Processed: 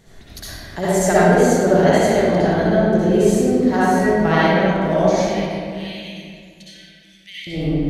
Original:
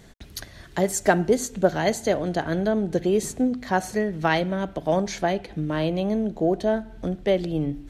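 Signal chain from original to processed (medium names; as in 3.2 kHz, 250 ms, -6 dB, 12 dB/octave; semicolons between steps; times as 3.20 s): 5.22–7.47 s: steep high-pass 2.1 kHz 48 dB/octave; reverberation RT60 2.3 s, pre-delay 55 ms, DRR -11 dB; trim -3.5 dB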